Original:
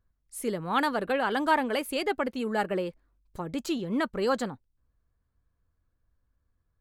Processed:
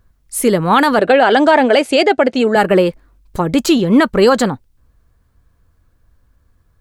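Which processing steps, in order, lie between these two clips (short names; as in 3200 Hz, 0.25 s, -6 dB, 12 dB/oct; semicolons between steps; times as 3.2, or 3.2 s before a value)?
0.99–2.56 speaker cabinet 110–7900 Hz, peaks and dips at 200 Hz -7 dB, 670 Hz +8 dB, 1100 Hz -8 dB; maximiser +19.5 dB; gain -1 dB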